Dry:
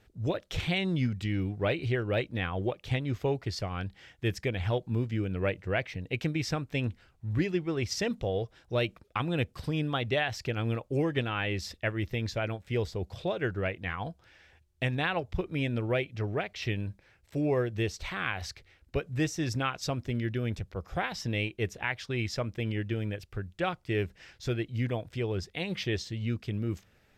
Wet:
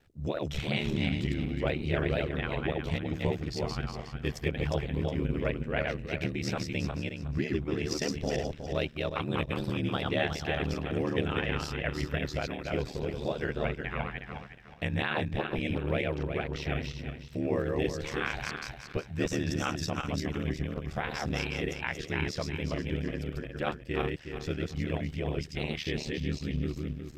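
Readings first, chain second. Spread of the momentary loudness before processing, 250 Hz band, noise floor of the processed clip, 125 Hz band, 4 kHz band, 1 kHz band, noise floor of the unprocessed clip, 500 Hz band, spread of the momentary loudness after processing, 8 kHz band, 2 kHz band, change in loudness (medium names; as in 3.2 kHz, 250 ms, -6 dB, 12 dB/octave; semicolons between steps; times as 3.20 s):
6 LU, 0.0 dB, -46 dBFS, -1.5 dB, -0.5 dB, -0.5 dB, -65 dBFS, -0.5 dB, 5 LU, 0.0 dB, -0.5 dB, -0.5 dB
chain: backward echo that repeats 182 ms, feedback 52%, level -2 dB; ring modulator 37 Hz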